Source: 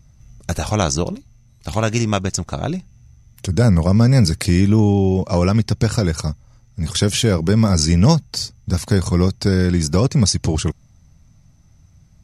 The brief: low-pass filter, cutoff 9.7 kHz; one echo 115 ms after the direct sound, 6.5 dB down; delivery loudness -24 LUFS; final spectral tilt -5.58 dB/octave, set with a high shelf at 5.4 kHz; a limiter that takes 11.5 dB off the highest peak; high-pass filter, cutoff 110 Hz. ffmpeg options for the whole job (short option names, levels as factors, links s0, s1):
-af "highpass=110,lowpass=9700,highshelf=f=5400:g=-6,alimiter=limit=0.237:level=0:latency=1,aecho=1:1:115:0.473,volume=0.891"